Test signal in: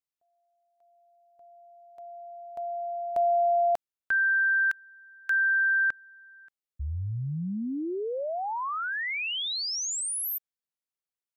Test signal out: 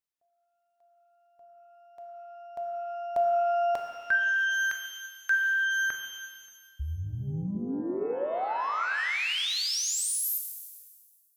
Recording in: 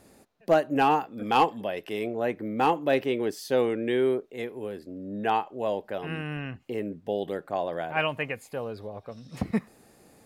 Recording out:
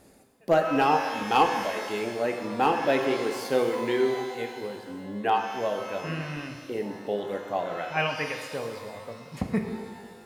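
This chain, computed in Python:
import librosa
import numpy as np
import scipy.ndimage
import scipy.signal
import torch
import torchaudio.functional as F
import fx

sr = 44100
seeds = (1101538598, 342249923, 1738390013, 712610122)

y = fx.dereverb_blind(x, sr, rt60_s=1.0)
y = fx.rev_shimmer(y, sr, seeds[0], rt60_s=1.6, semitones=12, shimmer_db=-8, drr_db=3.5)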